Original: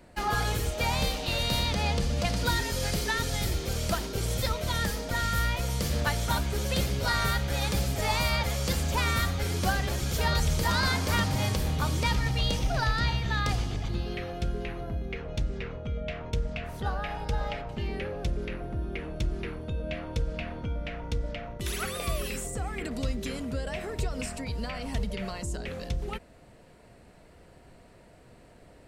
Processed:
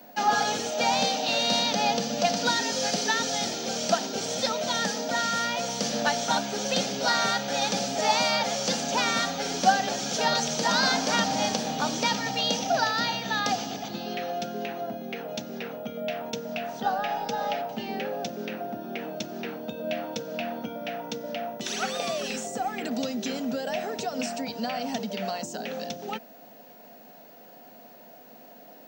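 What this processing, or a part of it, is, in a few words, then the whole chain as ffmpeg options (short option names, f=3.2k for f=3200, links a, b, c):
old television with a line whistle: -af "highpass=f=220:w=0.5412,highpass=f=220:w=1.3066,equalizer=f=230:t=q:w=4:g=5,equalizer=f=360:t=q:w=4:g=-9,equalizer=f=750:t=q:w=4:g=8,equalizer=f=1.1k:t=q:w=4:g=-7,equalizer=f=2.1k:t=q:w=4:g=-6,equalizer=f=6k:t=q:w=4:g=7,lowpass=f=6.7k:w=0.5412,lowpass=f=6.7k:w=1.3066,aeval=exprs='val(0)+0.00158*sin(2*PI*15625*n/s)':c=same,volume=5dB"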